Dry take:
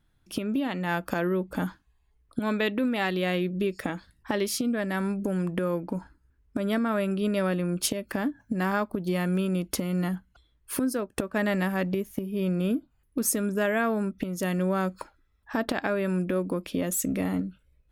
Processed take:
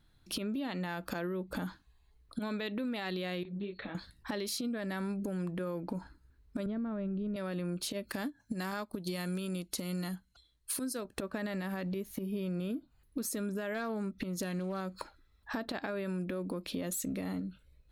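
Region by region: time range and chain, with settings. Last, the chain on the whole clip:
0:03.43–0:03.95: linear-phase brick-wall low-pass 4,400 Hz + downward compressor 4 to 1, threshold −35 dBFS + micro pitch shift up and down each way 41 cents
0:06.66–0:07.36: low-pass filter 5,200 Hz + spectral tilt −4.5 dB per octave
0:08.11–0:11.05: parametric band 8,400 Hz +11.5 dB 2.1 octaves + expander for the loud parts, over −37 dBFS
0:13.74–0:14.81: hard clipping −18.5 dBFS + highs frequency-modulated by the lows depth 0.11 ms
whole clip: parametric band 4,100 Hz +10.5 dB 0.26 octaves; brickwall limiter −21.5 dBFS; downward compressor 6 to 1, threshold −35 dBFS; level +1.5 dB

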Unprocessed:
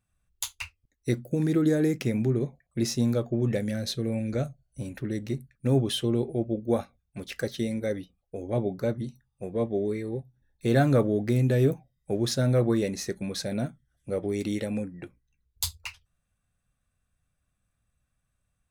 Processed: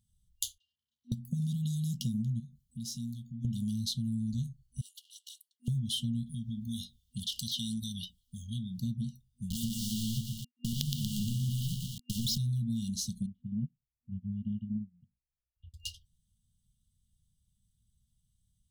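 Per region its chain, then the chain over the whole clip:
0:00.58–0:01.12: converter with a step at zero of −35.5 dBFS + flat-topped band-pass 980 Hz, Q 3.1 + comb filter 2.6 ms, depth 91%
0:02.40–0:03.45: high-shelf EQ 6,200 Hz +5 dB + downward compressor 2 to 1, threshold −50 dBFS
0:04.81–0:05.68: lower of the sound and its delayed copy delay 3.4 ms + linear-phase brick-wall high-pass 1,400 Hz + multiband upward and downward expander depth 70%
0:06.26–0:08.79: high shelf with overshoot 2,400 Hz +9 dB, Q 3 + downward compressor 2.5 to 1, threshold −34 dBFS
0:09.50–0:12.38: spectral envelope exaggerated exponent 2 + log-companded quantiser 2 bits + feedback echo at a low word length 118 ms, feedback 55%, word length 6 bits, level −3 dB
0:13.26–0:15.74: Butterworth low-pass 2,700 Hz 72 dB per octave + parametric band 1,600 Hz −7.5 dB 1.8 octaves + expander for the loud parts 2.5 to 1, over −43 dBFS
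whole clip: brick-wall band-stop 240–2,800 Hz; downward compressor 4 to 1, threshold −34 dBFS; level +3 dB

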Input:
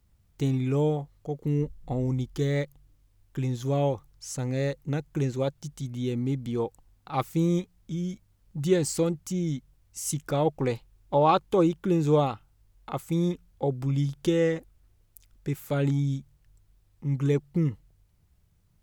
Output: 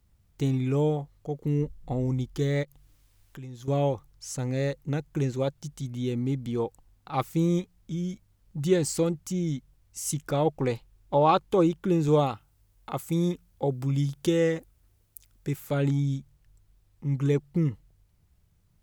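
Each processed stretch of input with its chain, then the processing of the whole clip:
0:02.63–0:03.68: downward compressor 2 to 1, threshold −48 dBFS + one half of a high-frequency compander encoder only
0:12.08–0:15.56: high-pass filter 42 Hz + high-shelf EQ 7,200 Hz +6.5 dB
whole clip: no processing

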